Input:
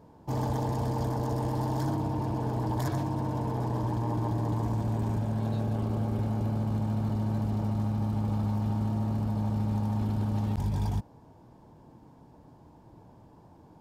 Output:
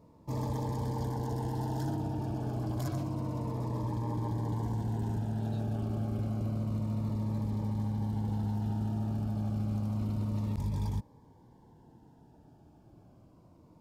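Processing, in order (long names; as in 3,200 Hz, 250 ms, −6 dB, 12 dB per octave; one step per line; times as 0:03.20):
phaser whose notches keep moving one way falling 0.29 Hz
level −3.5 dB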